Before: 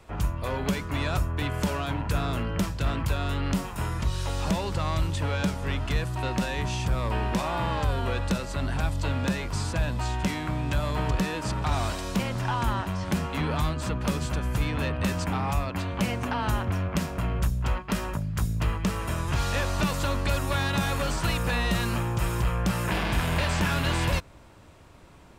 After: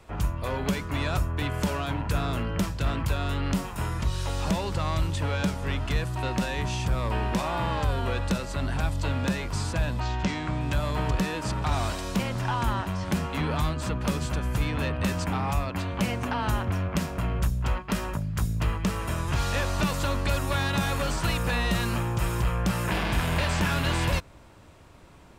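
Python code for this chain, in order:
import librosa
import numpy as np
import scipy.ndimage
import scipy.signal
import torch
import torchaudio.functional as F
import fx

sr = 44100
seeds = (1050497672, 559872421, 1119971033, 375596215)

y = fx.lowpass(x, sr, hz=fx.line((9.99, 5400.0), (10.59, 9000.0)), slope=24, at=(9.99, 10.59), fade=0.02)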